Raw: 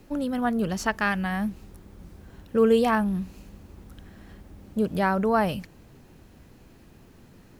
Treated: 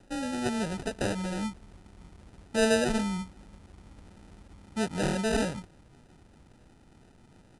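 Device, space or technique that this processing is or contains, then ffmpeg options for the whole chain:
crushed at another speed: -af "asetrate=88200,aresample=44100,acrusher=samples=20:mix=1:aa=0.000001,asetrate=22050,aresample=44100,volume=-5dB"

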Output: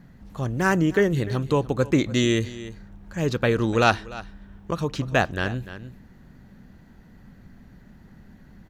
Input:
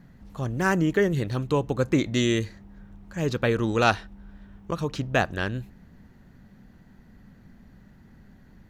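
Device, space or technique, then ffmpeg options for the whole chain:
ducked delay: -filter_complex "[0:a]asplit=3[a][b][c];[b]adelay=297,volume=-6dB[d];[c]apad=whole_len=396606[e];[d][e]sidechaincompress=threshold=-35dB:ratio=4:attack=34:release=708[f];[a][f]amix=inputs=2:normalize=0,volume=2dB"

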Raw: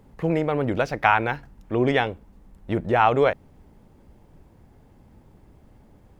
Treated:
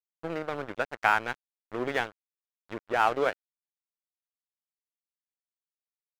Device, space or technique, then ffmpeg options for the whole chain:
pocket radio on a weak battery: -af "highpass=300,lowpass=3.3k,aeval=exprs='sgn(val(0))*max(abs(val(0))-0.0376,0)':c=same,equalizer=f=1.5k:t=o:w=0.49:g=4,volume=-5dB"

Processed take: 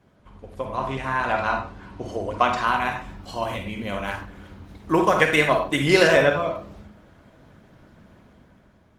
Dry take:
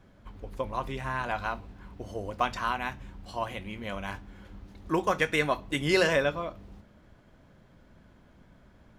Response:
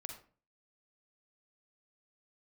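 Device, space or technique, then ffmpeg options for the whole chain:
far-field microphone of a smart speaker: -filter_complex "[0:a]asettb=1/sr,asplit=3[a][b][c];[a]atrim=end=0.754[d];[b]atrim=start=0.75:end=2.68,asetpts=PTS-STARTPTS,afade=t=in:d=0.004:c=qsin,afade=t=out:st=1.926:d=0.004:c=qsin,lowpass=9.1k[e];[c]atrim=start=2.676[f];[d][e]acrossfade=d=0.004:c1=hsin:c2=qsin[g];[g][f]acrossfade=d=0.004:c1=qsin:c2=hsin,asettb=1/sr,asplit=3[h][i][j];[h]atrim=end=3.344[k];[i]atrim=start=3.34:end=3.92,asetpts=PTS-STARTPTS,afade=t=in:d=0.004:c=qsin,afade=t=out:st=0.576:d=0.004:c=qsin,equalizer=f=1.2k:w=0.67:g=-5[l];[j]atrim=start=3.916[m];[k][l]acrossfade=d=0.004:c1=hsin:c2=qsin[n];[n][m]acrossfade=d=0.004:c1=qsin:c2=hsin[o];[1:a]atrim=start_sample=2205[p];[o][p]afir=irnorm=-1:irlink=0,highpass=f=97:p=1,dynaudnorm=f=140:g=11:m=7dB,volume=5.5dB" -ar 48000 -c:a libopus -b:a 20k

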